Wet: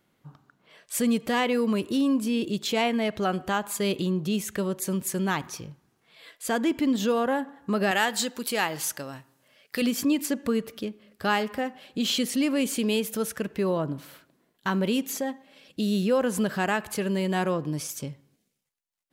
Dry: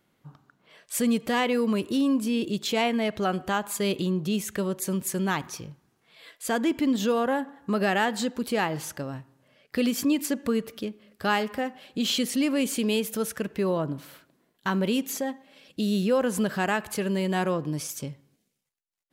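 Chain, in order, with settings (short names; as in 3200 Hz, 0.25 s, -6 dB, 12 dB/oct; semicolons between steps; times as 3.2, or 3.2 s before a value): 7.91–9.82 tilt +2.5 dB/oct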